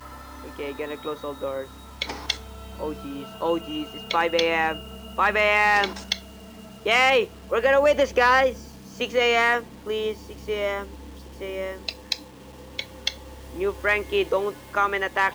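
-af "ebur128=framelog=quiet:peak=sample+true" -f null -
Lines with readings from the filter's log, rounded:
Integrated loudness:
  I:         -23.7 LUFS
  Threshold: -34.6 LUFS
Loudness range:
  LRA:        10.7 LU
  Threshold: -44.2 LUFS
  LRA low:   -31.4 LUFS
  LRA high:  -20.8 LUFS
Sample peak:
  Peak:       -8.3 dBFS
True peak:
  Peak:       -8.3 dBFS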